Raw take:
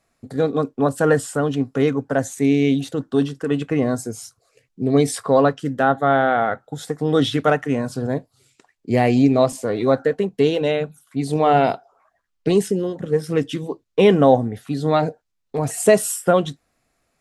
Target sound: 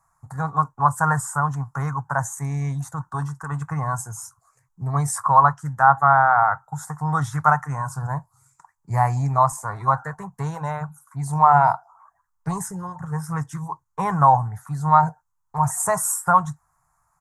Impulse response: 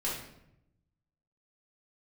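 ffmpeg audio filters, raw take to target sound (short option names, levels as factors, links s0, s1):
-af "firequalizer=gain_entry='entry(160,0);entry(230,-25);entry(480,-23);entry(920,13);entry(2900,-29);entry(6500,0)':delay=0.05:min_phase=1,volume=1.19"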